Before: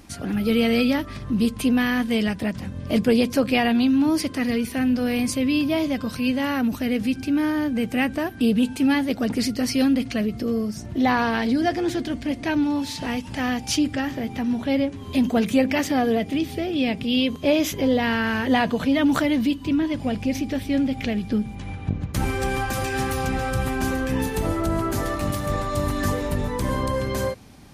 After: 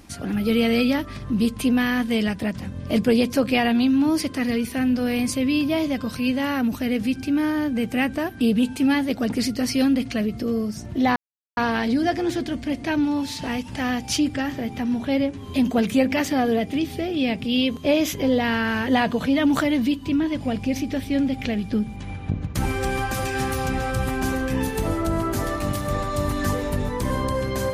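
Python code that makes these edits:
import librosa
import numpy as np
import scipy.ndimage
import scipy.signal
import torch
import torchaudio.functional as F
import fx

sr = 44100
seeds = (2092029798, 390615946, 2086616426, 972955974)

y = fx.edit(x, sr, fx.insert_silence(at_s=11.16, length_s=0.41), tone=tone)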